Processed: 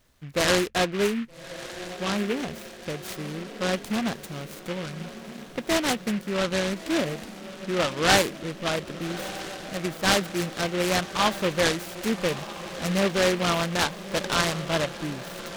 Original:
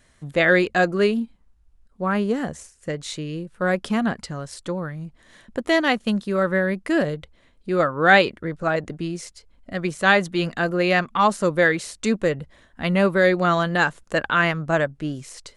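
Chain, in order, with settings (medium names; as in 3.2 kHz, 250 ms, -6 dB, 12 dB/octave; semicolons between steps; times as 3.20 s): echo that smears into a reverb 1246 ms, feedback 60%, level -13 dB; delay time shaken by noise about 1.9 kHz, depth 0.12 ms; trim -5 dB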